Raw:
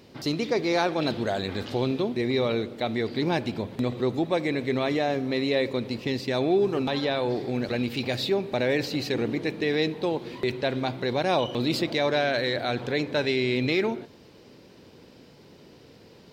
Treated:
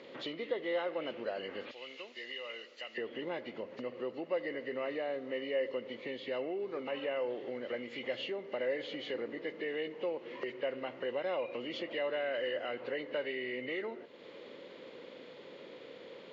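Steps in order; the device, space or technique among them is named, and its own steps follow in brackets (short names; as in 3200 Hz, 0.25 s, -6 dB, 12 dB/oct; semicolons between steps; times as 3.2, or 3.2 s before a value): 1.71–2.98 pre-emphasis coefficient 0.97; hearing aid with frequency lowering (nonlinear frequency compression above 1600 Hz 1.5:1; compressor 2.5:1, threshold -44 dBFS, peak gain reduction 16.5 dB; speaker cabinet 300–5800 Hz, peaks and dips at 530 Hz +10 dB, 760 Hz -3 dB, 1200 Hz +4 dB, 2000 Hz +6 dB, 4300 Hz +8 dB)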